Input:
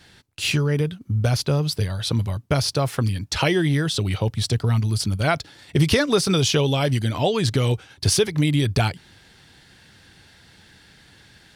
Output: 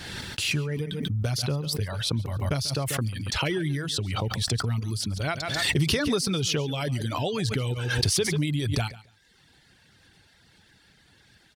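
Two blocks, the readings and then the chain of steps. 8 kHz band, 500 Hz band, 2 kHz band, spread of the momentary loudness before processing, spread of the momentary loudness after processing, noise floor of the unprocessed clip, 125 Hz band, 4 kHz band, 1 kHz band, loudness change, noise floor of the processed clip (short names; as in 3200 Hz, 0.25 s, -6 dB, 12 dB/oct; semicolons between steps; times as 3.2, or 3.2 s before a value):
-3.0 dB, -7.5 dB, -3.0 dB, 6 LU, 6 LU, -53 dBFS, -6.0 dB, -3.0 dB, -6.5 dB, -5.5 dB, -60 dBFS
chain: dynamic EQ 790 Hz, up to -4 dB, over -32 dBFS, Q 0.84; reverb removal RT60 0.78 s; on a send: feedback echo 0.14 s, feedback 17%, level -18.5 dB; on the sum: backwards sustainer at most 29 dB/s; gain -6 dB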